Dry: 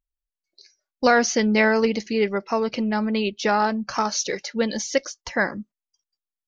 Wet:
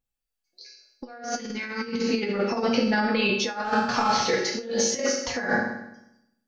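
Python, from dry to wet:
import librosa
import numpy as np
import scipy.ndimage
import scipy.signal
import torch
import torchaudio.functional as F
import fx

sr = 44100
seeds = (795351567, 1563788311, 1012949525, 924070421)

y = fx.cvsd(x, sr, bps=32000, at=(3.64, 4.28))
y = fx.rev_fdn(y, sr, rt60_s=0.82, lf_ratio=1.2, hf_ratio=0.95, size_ms=12.0, drr_db=-3.5)
y = fx.over_compress(y, sr, threshold_db=-21.0, ratio=-0.5)
y = fx.comb_fb(y, sr, f0_hz=120.0, decay_s=0.26, harmonics='all', damping=0.0, mix_pct=80)
y = fx.peak_eq(y, sr, hz=660.0, db=-13.5, octaves=0.68, at=(1.35, 2.09))
y = fx.notch(y, sr, hz=1100.0, q=9.2, at=(2.71, 3.12))
y = y * librosa.db_to_amplitude(4.5)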